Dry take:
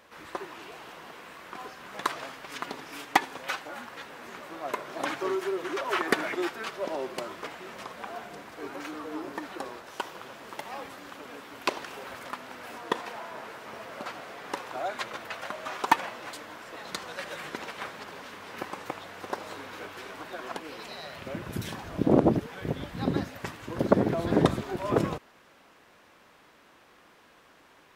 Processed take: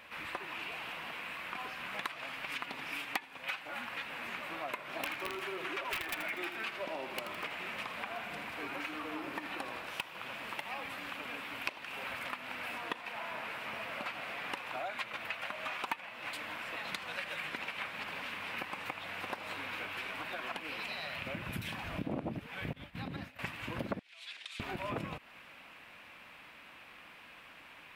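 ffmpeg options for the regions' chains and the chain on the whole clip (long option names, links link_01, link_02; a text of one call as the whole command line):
ffmpeg -i in.wav -filter_complex "[0:a]asettb=1/sr,asplit=3[link_01][link_02][link_03];[link_01]atrim=end=4.874[link_04];[link_02]atrim=start=4.87:end=10.04,asetpts=PTS-STARTPTS,afade=type=in:duration=0.004:curve=qsin,afade=type=out:start_time=5.166:duration=0.004:curve=qsin,aeval=exprs='(mod(10*val(0)+1,2)-1)/10':channel_layout=same,aecho=1:1:81|162|243|324|405|486:0.299|0.158|0.0839|0.0444|0.0236|0.0125,atrim=end_sample=227997[link_05];[link_03]atrim=start=10.036[link_06];[link_04][link_05]acrossfade=duration=0.004:curve1=hsin:curve2=qsin[link_07];[link_07][link_06]acrossfade=duration=0.004:curve1=qsin:curve2=hsin,asettb=1/sr,asplit=3[link_08][link_09][link_10];[link_08]atrim=end=22.734[link_11];[link_09]atrim=start=22.73:end=23.39,asetpts=PTS-STARTPTS,afade=type=in:duration=0.004:curve=qsin,afade=type=out:start_time=0.656:duration=0.004:curve=qsin,agate=range=-33dB:threshold=-33dB:ratio=3:release=100:detection=peak,acompressor=threshold=-38dB:ratio=3:attack=3.2:release=140:knee=1:detection=peak[link_12];[link_10]atrim=start=23.386[link_13];[link_11][link_12]acrossfade=duration=0.004:curve1=hsin:curve2=qsin[link_14];[link_14][link_13]acrossfade=duration=0.004:curve1=qsin:curve2=hsin,asettb=1/sr,asplit=3[link_15][link_16][link_17];[link_15]atrim=end=23.994[link_18];[link_16]atrim=start=23.99:end=24.6,asetpts=PTS-STARTPTS,afade=type=in:duration=0.004:curve=qsin,afade=type=out:start_time=0.606:duration=0.004:curve=qsin,acompressor=threshold=-25dB:ratio=6:attack=3.2:release=140:knee=1:detection=peak,asuperpass=centerf=5100:order=4:qfactor=0.89[link_19];[link_17]atrim=start=24.596[link_20];[link_18][link_19]acrossfade=duration=0.004:curve1=hsin:curve2=qsin[link_21];[link_21][link_20]acrossfade=duration=0.004:curve1=qsin:curve2=hsin,equalizer=frequency=400:width_type=o:width=0.67:gain=-8,equalizer=frequency=2500:width_type=o:width=0.67:gain=11,equalizer=frequency=6300:width_type=o:width=0.67:gain=-7,acompressor=threshold=-38dB:ratio=4,volume=1dB" out.wav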